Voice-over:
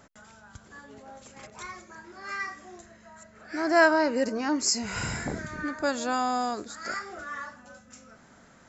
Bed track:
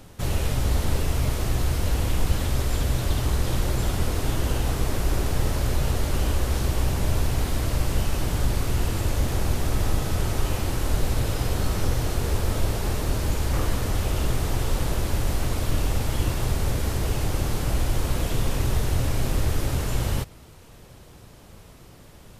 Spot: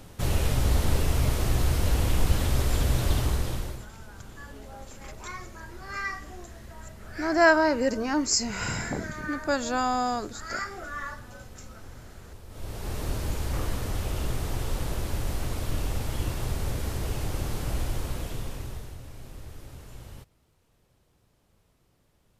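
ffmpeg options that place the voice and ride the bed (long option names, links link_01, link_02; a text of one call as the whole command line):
ffmpeg -i stem1.wav -i stem2.wav -filter_complex "[0:a]adelay=3650,volume=1dB[link_01];[1:a]volume=16dB,afade=type=out:start_time=3.15:duration=0.71:silence=0.0841395,afade=type=in:start_time=12.49:duration=0.55:silence=0.149624,afade=type=out:start_time=17.81:duration=1.17:silence=0.199526[link_02];[link_01][link_02]amix=inputs=2:normalize=0" out.wav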